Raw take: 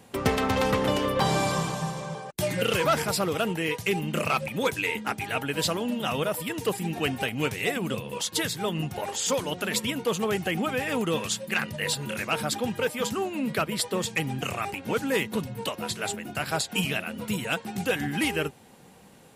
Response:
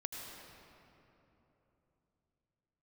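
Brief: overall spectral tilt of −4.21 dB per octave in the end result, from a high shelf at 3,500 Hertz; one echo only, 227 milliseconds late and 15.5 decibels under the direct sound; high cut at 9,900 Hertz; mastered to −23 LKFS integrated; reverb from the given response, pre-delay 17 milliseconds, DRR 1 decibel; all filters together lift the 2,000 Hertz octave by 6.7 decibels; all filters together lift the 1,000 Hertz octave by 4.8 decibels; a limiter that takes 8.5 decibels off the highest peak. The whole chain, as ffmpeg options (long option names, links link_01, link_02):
-filter_complex "[0:a]lowpass=9900,equalizer=frequency=1000:width_type=o:gain=4,equalizer=frequency=2000:width_type=o:gain=9,highshelf=frequency=3500:gain=-4.5,alimiter=limit=-15dB:level=0:latency=1,aecho=1:1:227:0.168,asplit=2[link_01][link_02];[1:a]atrim=start_sample=2205,adelay=17[link_03];[link_02][link_03]afir=irnorm=-1:irlink=0,volume=-0.5dB[link_04];[link_01][link_04]amix=inputs=2:normalize=0,volume=1dB"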